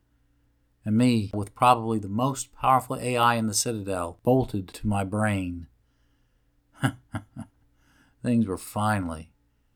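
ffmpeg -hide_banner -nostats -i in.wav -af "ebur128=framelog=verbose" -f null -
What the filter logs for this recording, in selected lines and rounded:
Integrated loudness:
  I:         -25.6 LUFS
  Threshold: -37.1 LUFS
Loudness range:
  LRA:         8.5 LU
  Threshold: -47.0 LUFS
  LRA low:   -32.6 LUFS
  LRA high:  -24.1 LUFS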